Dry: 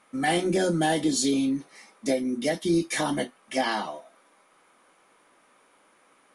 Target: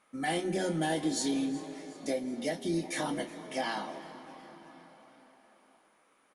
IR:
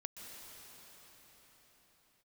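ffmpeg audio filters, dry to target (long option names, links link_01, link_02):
-filter_complex "[0:a]asplit=5[link_01][link_02][link_03][link_04][link_05];[link_02]adelay=369,afreqshift=150,volume=-19.5dB[link_06];[link_03]adelay=738,afreqshift=300,volume=-25.5dB[link_07];[link_04]adelay=1107,afreqshift=450,volume=-31.5dB[link_08];[link_05]adelay=1476,afreqshift=600,volume=-37.6dB[link_09];[link_01][link_06][link_07][link_08][link_09]amix=inputs=5:normalize=0,asplit=2[link_10][link_11];[1:a]atrim=start_sample=2205,highshelf=frequency=5600:gain=-9.5,adelay=25[link_12];[link_11][link_12]afir=irnorm=-1:irlink=0,volume=-6dB[link_13];[link_10][link_13]amix=inputs=2:normalize=0,volume=-7.5dB"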